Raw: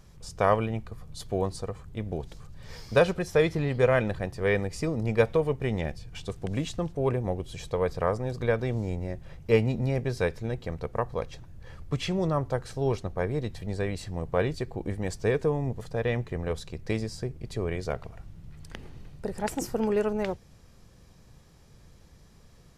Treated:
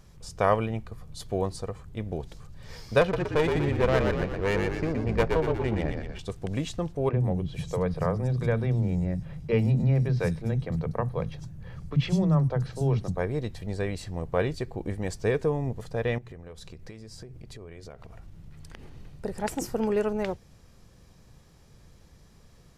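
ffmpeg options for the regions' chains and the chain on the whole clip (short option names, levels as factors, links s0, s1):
-filter_complex "[0:a]asettb=1/sr,asplit=3[s0][s1][s2];[s0]atrim=end=3.014[s3];[s1]atrim=start=3.01:end=6.19,asetpts=PTS-STARTPTS,afade=t=in:d=0.004:c=qsin,afade=t=out:st=3.176:d=0.004:c=qsin,aeval=exprs='clip(val(0),-1,0.0531)':c=same,adynamicsmooth=sensitivity=4.5:basefreq=2000,asplit=8[s4][s5][s6][s7][s8][s9][s10][s11];[s5]adelay=120,afreqshift=-49,volume=0.631[s12];[s6]adelay=240,afreqshift=-98,volume=0.347[s13];[s7]adelay=360,afreqshift=-147,volume=0.191[s14];[s8]adelay=480,afreqshift=-196,volume=0.105[s15];[s9]adelay=600,afreqshift=-245,volume=0.0575[s16];[s10]adelay=720,afreqshift=-294,volume=0.0316[s17];[s11]adelay=840,afreqshift=-343,volume=0.0174[s18];[s4][s12][s13][s14][s15][s16][s17][s18]amix=inputs=8:normalize=0,atrim=end_sample=140238[s19];[s2]atrim=start=6.186[s20];[s3][s19]acrossfade=d=0.004:c1=hsin:c2=qsin[s21];[s21][s20]acrossfade=d=0.004:c1=qsin:c2=hsin,asettb=1/sr,asplit=3[s22][s23][s24];[s22]atrim=end=7.094[s25];[s23]atrim=start=7.09:end=13.18,asetpts=PTS-STARTPTS,afade=t=in:d=0.004:c=qsin,afade=t=out:st=6.086:d=0.004:c=qsin,equalizer=f=160:w=1.3:g=13,acompressor=threshold=0.0708:ratio=1.5:attack=3.2:release=140:knee=1:detection=peak,acrossover=split=270|4900[s26][s27][s28];[s26]adelay=40[s29];[s28]adelay=100[s30];[s29][s27][s30]amix=inputs=3:normalize=0,atrim=end_sample=268569[s31];[s24]atrim=start=13.176[s32];[s25][s31]acrossfade=d=0.004:c1=hsin:c2=qsin[s33];[s33][s32]acrossfade=d=0.004:c1=qsin:c2=hsin,asettb=1/sr,asplit=3[s34][s35][s36];[s34]atrim=end=16.184[s37];[s35]atrim=start=16.18:end=18.97,asetpts=PTS-STARTPTS,afade=t=in:d=0.004:c=qsin,afade=t=out:st=2.786:d=0.004:c=qsin,bandreject=f=60:t=h:w=6,bandreject=f=120:t=h:w=6,bandreject=f=180:t=h:w=6,acompressor=threshold=0.0112:ratio=12:attack=3.2:release=140:knee=1:detection=peak[s38];[s36]atrim=start=18.966[s39];[s37][s38]acrossfade=d=0.004:c1=hsin:c2=qsin[s40];[s40][s39]acrossfade=d=0.004:c1=qsin:c2=hsin"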